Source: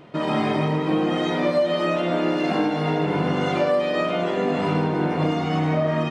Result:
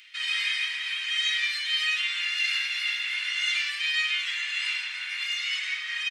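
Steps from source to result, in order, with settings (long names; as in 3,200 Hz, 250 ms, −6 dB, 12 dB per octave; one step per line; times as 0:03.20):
Butterworth high-pass 2,000 Hz 36 dB per octave
on a send: echo with shifted repeats 169 ms, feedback 41%, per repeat −140 Hz, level −13 dB
on the sum: level +8.5 dB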